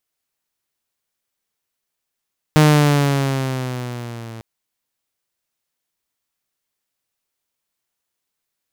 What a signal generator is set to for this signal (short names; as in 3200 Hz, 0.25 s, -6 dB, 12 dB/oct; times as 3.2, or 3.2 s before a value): gliding synth tone saw, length 1.85 s, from 154 Hz, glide -5.5 st, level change -24 dB, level -5.5 dB